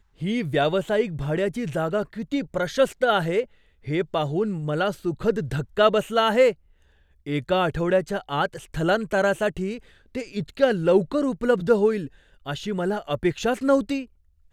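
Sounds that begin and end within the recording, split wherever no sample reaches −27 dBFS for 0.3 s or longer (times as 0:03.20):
0:03.88–0:06.51
0:07.27–0:09.76
0:10.15–0:12.06
0:12.47–0:14.02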